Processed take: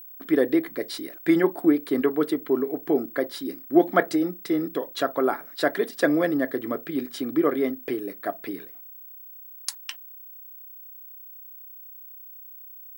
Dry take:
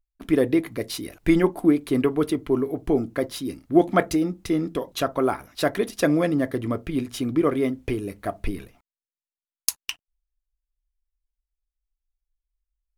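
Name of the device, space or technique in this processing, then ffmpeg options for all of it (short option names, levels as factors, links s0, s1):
old television with a line whistle: -af "highpass=f=190:w=0.5412,highpass=f=190:w=1.3066,equalizer=f=210:t=q:w=4:g=-8,equalizer=f=990:t=q:w=4:g=-3,equalizer=f=1700:t=q:w=4:g=5,equalizer=f=2600:t=q:w=4:g=-9,equalizer=f=6300:t=q:w=4:g=-8,lowpass=f=8900:w=0.5412,lowpass=f=8900:w=1.3066,aeval=exprs='val(0)+0.00891*sin(2*PI*15734*n/s)':c=same"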